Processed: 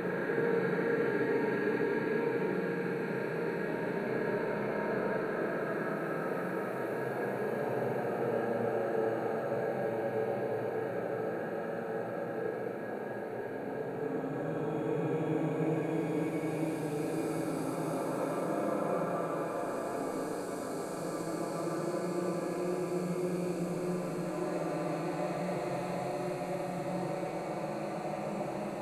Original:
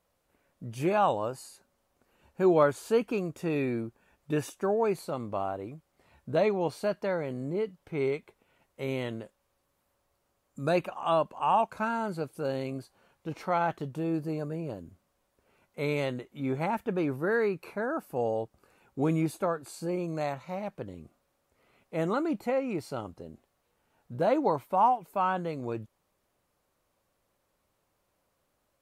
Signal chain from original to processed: backward echo that repeats 171 ms, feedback 85%, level -5 dB; Paulstretch 8.5×, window 0.50 s, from 17.27 s; Schroeder reverb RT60 3.6 s, combs from 30 ms, DRR 1 dB; trim -8.5 dB

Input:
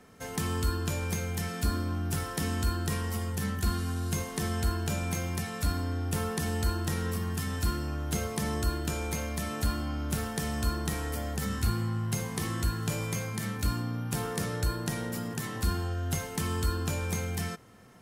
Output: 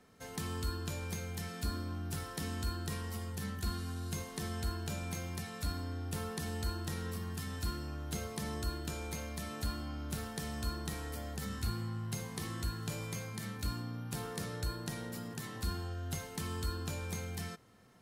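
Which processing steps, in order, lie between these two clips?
peaking EQ 4.1 kHz +4.5 dB 0.45 oct; trim -8 dB

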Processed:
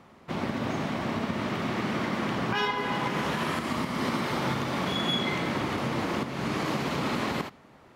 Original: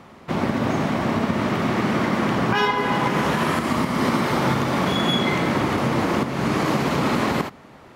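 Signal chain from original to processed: dynamic bell 3.5 kHz, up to +4 dB, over -41 dBFS, Q 0.82; trim -8.5 dB

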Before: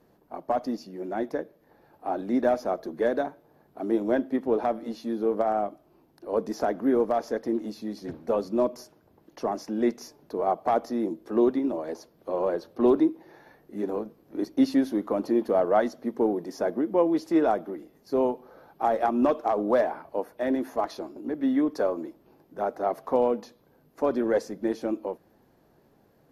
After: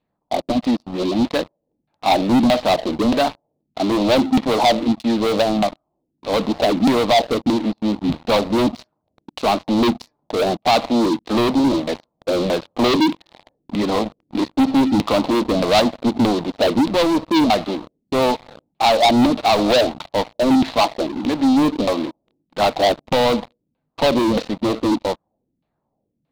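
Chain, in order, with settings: LFO low-pass saw down 1.6 Hz 210–2700 Hz; waveshaping leveller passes 5; fifteen-band graphic EQ 400 Hz -9 dB, 1.6 kHz -9 dB, 4 kHz +11 dB; trim -2 dB

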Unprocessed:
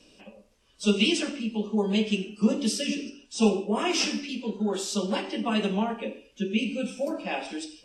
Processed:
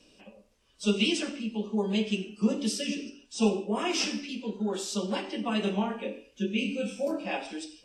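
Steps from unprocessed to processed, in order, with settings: 5.64–7.37 s: doubling 25 ms -4 dB; trim -3 dB

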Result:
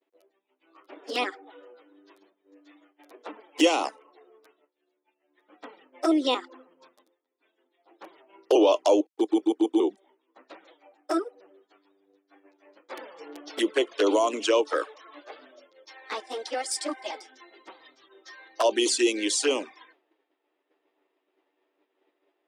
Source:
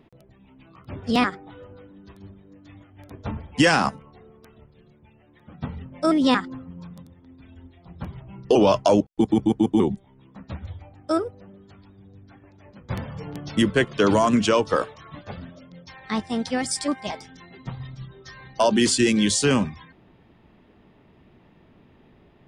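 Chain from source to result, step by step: touch-sensitive flanger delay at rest 11 ms, full sweep at -15 dBFS; Chebyshev high-pass 310 Hz, order 5; expander -54 dBFS

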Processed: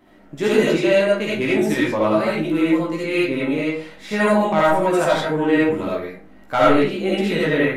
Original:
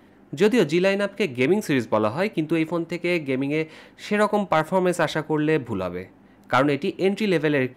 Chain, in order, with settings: chorus voices 6, 0.31 Hz, delay 16 ms, depth 3.3 ms; algorithmic reverb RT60 0.43 s, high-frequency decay 0.65×, pre-delay 30 ms, DRR -6 dB

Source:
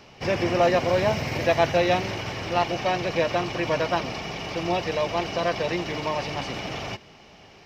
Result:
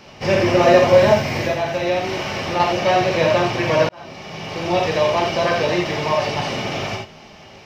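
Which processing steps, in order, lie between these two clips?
1.12–2.60 s: compression 6:1, threshold -25 dBFS, peak gain reduction 10 dB; gated-style reverb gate 110 ms flat, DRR -1 dB; 3.89–4.89 s: fade in; trim +4 dB

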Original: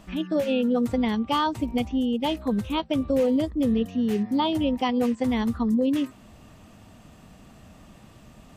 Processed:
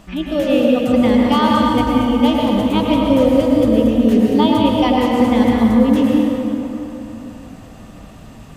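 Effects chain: plate-style reverb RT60 3.4 s, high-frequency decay 0.55×, pre-delay 90 ms, DRR -3 dB; trim +5.5 dB

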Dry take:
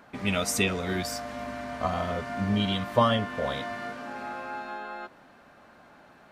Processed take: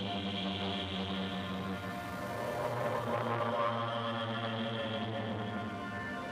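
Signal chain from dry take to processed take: compression, threshold -27 dBFS, peak gain reduction 10.5 dB; Paulstretch 9.6×, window 0.25 s, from 2.66 s; transformer saturation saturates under 1.1 kHz; trim -1.5 dB

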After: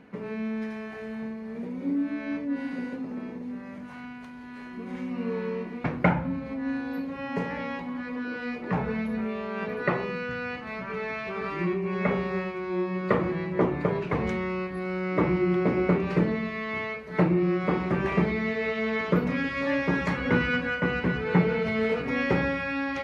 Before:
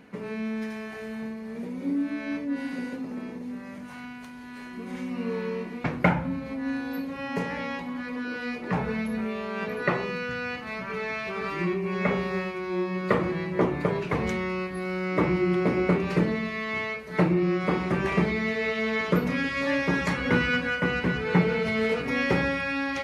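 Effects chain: low-pass 2.5 kHz 6 dB/octave

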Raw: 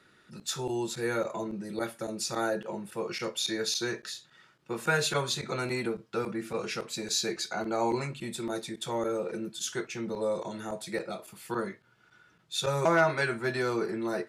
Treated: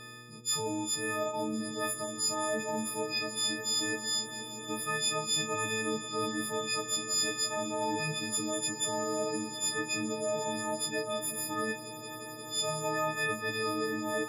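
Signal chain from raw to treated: partials quantised in pitch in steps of 6 st; high-pass 95 Hz; reverse; compression 5:1, threshold -38 dBFS, peak gain reduction 21 dB; reverse; mains buzz 120 Hz, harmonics 4, -61 dBFS -4 dB/octave; on a send: echo with a slow build-up 176 ms, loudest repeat 8, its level -17.5 dB; on the sum: trim +6.5 dB

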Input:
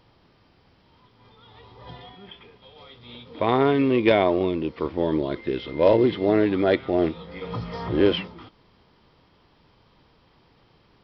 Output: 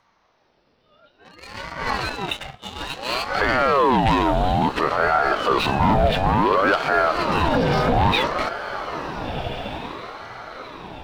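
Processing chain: spectral noise reduction 12 dB; in parallel at 0 dB: compression, threshold -30 dBFS, peak gain reduction 16.5 dB; on the sum: waveshaping leveller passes 2; peak limiter -18 dBFS, peak gain reduction 13.5 dB; on a send: echo that smears into a reverb 1446 ms, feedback 41%, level -10 dB; on the sum: ring modulator with a swept carrier 680 Hz, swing 55%, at 0.58 Hz; trim +8.5 dB

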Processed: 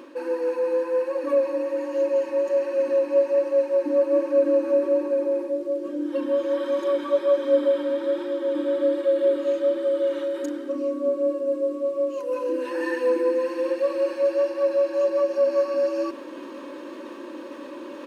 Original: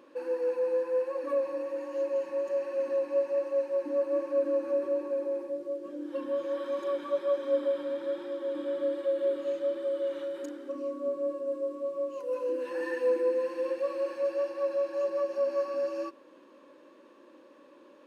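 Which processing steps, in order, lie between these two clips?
band-stop 610 Hz, Q 12; comb 3.2 ms, depth 44%; reverse; upward compressor, threshold -34 dBFS; reverse; trim +7.5 dB

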